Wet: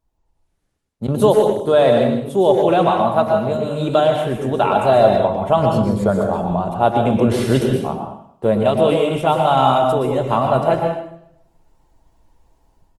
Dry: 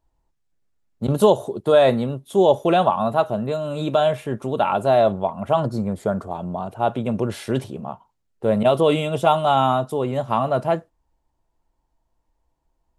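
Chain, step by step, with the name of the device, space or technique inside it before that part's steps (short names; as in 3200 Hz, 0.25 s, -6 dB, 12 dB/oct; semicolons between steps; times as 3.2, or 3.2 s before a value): 1.15–1.79 bell 6100 Hz +3.5 dB 0.23 oct; speakerphone in a meeting room (reverb RT60 0.65 s, pre-delay 0.114 s, DRR 3 dB; speakerphone echo 0.1 s, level -13 dB; AGC gain up to 13.5 dB; gain -1 dB; Opus 24 kbps 48000 Hz)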